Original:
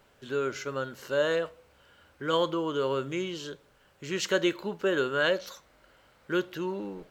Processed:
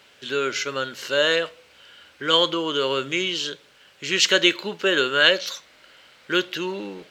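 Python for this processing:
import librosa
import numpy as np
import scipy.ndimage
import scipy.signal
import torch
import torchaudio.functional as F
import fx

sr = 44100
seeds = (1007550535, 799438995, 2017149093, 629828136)

y = fx.weighting(x, sr, curve='D')
y = y * librosa.db_to_amplitude(4.5)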